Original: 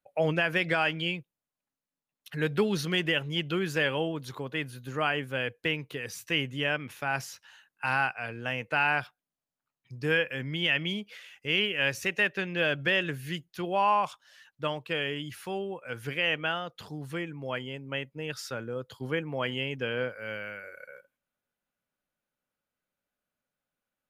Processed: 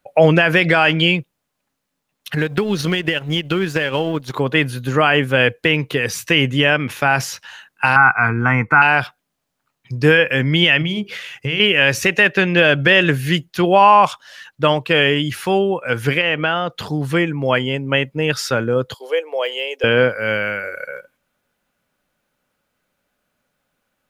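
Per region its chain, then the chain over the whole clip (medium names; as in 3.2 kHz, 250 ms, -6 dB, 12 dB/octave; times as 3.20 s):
2.35–4.34 s: companding laws mixed up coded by A + transient shaper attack +5 dB, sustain -7 dB + compression 8:1, threshold -31 dBFS
7.96–8.82 s: resonant high shelf 2.3 kHz -12 dB, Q 3 + comb 0.9 ms, depth 87%
10.81–11.60 s: peaking EQ 130 Hz +13.5 dB 0.6 oct + hum notches 50/100/150/200/250/300/350/400/450 Hz + compression 3:1, threshold -37 dBFS
16.21–16.70 s: low-pass 3.6 kHz 6 dB/octave + compression 2.5:1, threshold -32 dBFS
18.94–19.84 s: de-esser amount 95% + elliptic high-pass 460 Hz, stop band 70 dB + peaking EQ 1.4 kHz -14 dB 1.7 oct
whole clip: treble shelf 5.8 kHz -4.5 dB; loudness maximiser +18.5 dB; trim -1 dB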